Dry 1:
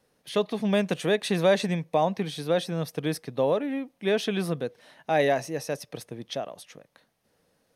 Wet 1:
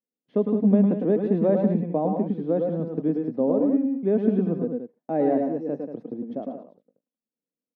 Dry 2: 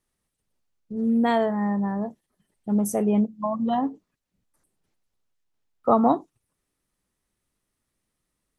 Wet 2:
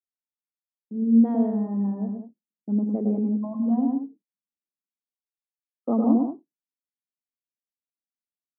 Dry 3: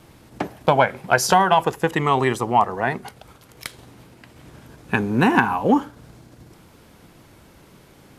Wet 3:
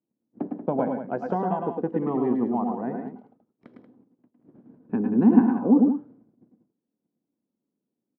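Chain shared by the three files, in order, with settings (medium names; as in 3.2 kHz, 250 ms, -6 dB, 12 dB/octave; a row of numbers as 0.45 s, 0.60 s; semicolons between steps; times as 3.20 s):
gate -43 dBFS, range -30 dB; ladder band-pass 280 Hz, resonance 50%; multi-tap echo 105/109/185 ms -8/-6/-9.5 dB; normalise loudness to -24 LUFS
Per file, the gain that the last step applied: +14.5 dB, +7.0 dB, +6.5 dB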